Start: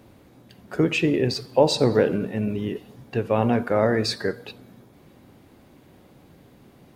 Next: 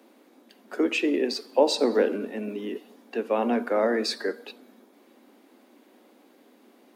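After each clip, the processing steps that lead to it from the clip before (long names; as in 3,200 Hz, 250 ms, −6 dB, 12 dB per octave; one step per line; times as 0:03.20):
Butterworth high-pass 220 Hz 72 dB per octave
level −2.5 dB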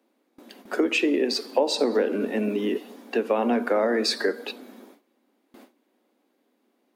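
downward compressor 4 to 1, threshold −28 dBFS, peak gain reduction 12 dB
noise gate with hold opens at −45 dBFS
level +8 dB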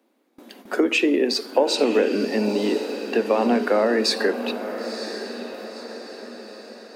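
feedback delay with all-pass diffusion 983 ms, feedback 50%, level −10 dB
level +3 dB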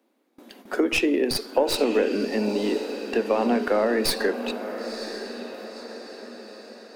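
stylus tracing distortion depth 0.079 ms
level −2.5 dB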